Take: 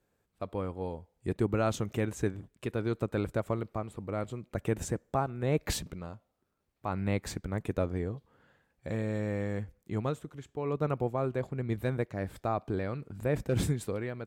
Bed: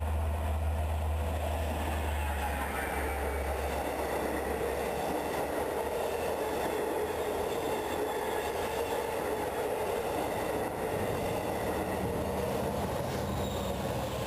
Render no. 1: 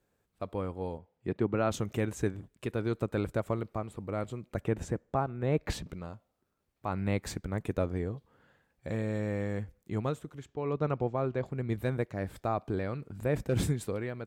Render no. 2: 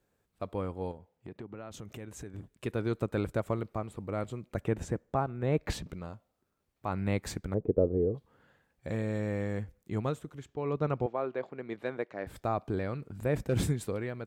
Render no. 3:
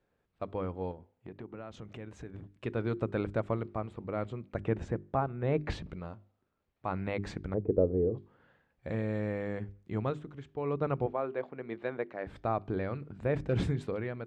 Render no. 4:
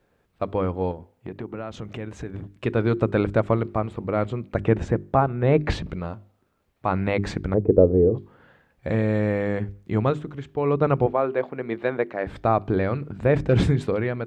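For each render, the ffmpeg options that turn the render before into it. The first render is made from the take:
-filter_complex "[0:a]asplit=3[s0][s1][s2];[s0]afade=t=out:st=0.97:d=0.02[s3];[s1]highpass=110,lowpass=3400,afade=t=in:st=0.97:d=0.02,afade=t=out:st=1.7:d=0.02[s4];[s2]afade=t=in:st=1.7:d=0.02[s5];[s3][s4][s5]amix=inputs=3:normalize=0,asettb=1/sr,asplit=3[s6][s7][s8];[s6]atrim=end=4.644[s9];[s7]atrim=start=4.64:end=5.89,asetpts=PTS-STARTPTS,afade=t=in:d=0.004:c=qsin,afade=t=out:st=1.246:d=0.004:c=qsin,lowpass=f=2800:p=1[s10];[s8]atrim=start=5.886[s11];[s9][s10]acrossfade=d=0.004:c1=hsin:c2=qsin[s12];[s12][s11]acrossfade=d=0.004:c1=qsin:c2=hsin,asettb=1/sr,asplit=3[s13][s14][s15];[s13]atrim=end=10.464[s16];[s14]atrim=start=10.46:end=11.46,asetpts=PTS-STARTPTS,afade=t=in:d=0.004:c=qsin,afade=t=out:st=0.996:d=0.004:c=qsin,lowpass=f=6200:w=0.5412,lowpass=f=6200:w=1.3066[s17];[s15]atrim=start=11.456[s18];[s16][s17]acrossfade=d=0.004:c1=hsin:c2=qsin[s19];[s19][s18]acrossfade=d=0.004:c1=qsin:c2=hsin"
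-filter_complex "[0:a]asettb=1/sr,asplit=3[s0][s1][s2];[s0]atrim=end=0.914[s3];[s1]atrim=start=0.91:end=2.34,asetpts=PTS-STARTPTS,afade=t=in:d=0.004:c=qsin,afade=t=out:st=1.426:d=0.004:c=qsin,acompressor=threshold=0.00794:ratio=4:attack=3.2:release=140:knee=1:detection=peak[s4];[s2]atrim=start=2.336[s5];[s3][s4]acrossfade=d=0.004:c1=hsin:c2=qsin[s6];[s6][s5]acrossfade=d=0.004:c1=qsin:c2=hsin,asettb=1/sr,asplit=3[s7][s8][s9];[s7]atrim=end=7.544[s10];[s8]atrim=start=7.54:end=8.15,asetpts=PTS-STARTPTS,afade=t=in:d=0.004:c=qsin,afade=t=out:st=0.606:d=0.004:c=qsin,lowpass=f=460:t=q:w=3.1[s11];[s9]atrim=start=8.146[s12];[s10][s11]acrossfade=d=0.004:c1=hsin:c2=qsin[s13];[s13][s12]acrossfade=d=0.004:c1=qsin:c2=hsin,asettb=1/sr,asplit=3[s14][s15][s16];[s14]atrim=end=11.064[s17];[s15]atrim=start=11.06:end=12.27,asetpts=PTS-STARTPTS,afade=t=in:d=0.004:c=qsin,afade=t=out:st=1.206:d=0.004:c=qsin,highpass=340,lowpass=3900[s18];[s16]atrim=start=12.266[s19];[s17][s18]acrossfade=d=0.004:c1=hsin:c2=qsin[s20];[s20][s19]acrossfade=d=0.004:c1=qsin:c2=hsin"
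-af "lowpass=3400,bandreject=f=50:t=h:w=6,bandreject=f=100:t=h:w=6,bandreject=f=150:t=h:w=6,bandreject=f=200:t=h:w=6,bandreject=f=250:t=h:w=6,bandreject=f=300:t=h:w=6,bandreject=f=350:t=h:w=6,bandreject=f=400:t=h:w=6"
-af "volume=3.55"

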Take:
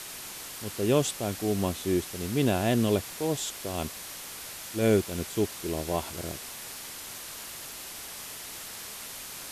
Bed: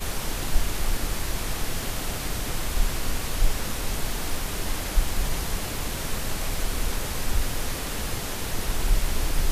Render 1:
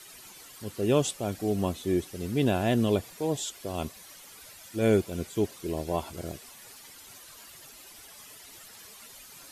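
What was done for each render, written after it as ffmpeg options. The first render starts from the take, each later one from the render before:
-af "afftdn=nr=12:nf=-41"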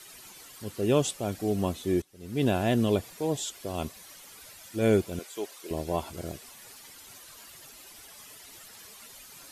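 -filter_complex "[0:a]asettb=1/sr,asplit=3[s0][s1][s2];[s0]atrim=end=5.194[s3];[s1]atrim=start=5.19:end=5.71,asetpts=PTS-STARTPTS,afade=t=in:d=0.004:c=qsin,afade=t=out:st=0.516:d=0.004:c=qsin,highpass=560[s4];[s2]atrim=start=5.706[s5];[s3][s4]acrossfade=d=0.004:c1=hsin:c2=qsin[s6];[s6][s5]acrossfade=d=0.004:c1=qsin:c2=hsin,asplit=2[s7][s8];[s7]atrim=end=2.02,asetpts=PTS-STARTPTS,afade=t=out:st=2.016:d=0.004:c=hsin:silence=0.1[s9];[s8]atrim=start=2.02,asetpts=PTS-STARTPTS,afade=t=in:d=0.42:c=qua:silence=0.1[s10];[s9][s10]concat=n=2:v=0:a=1"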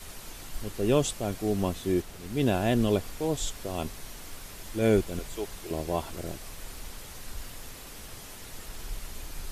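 -filter_complex "[1:a]volume=0.168[s0];[0:a][s0]amix=inputs=2:normalize=0"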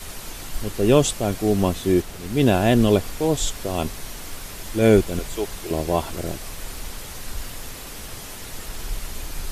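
-af "volume=2.51"

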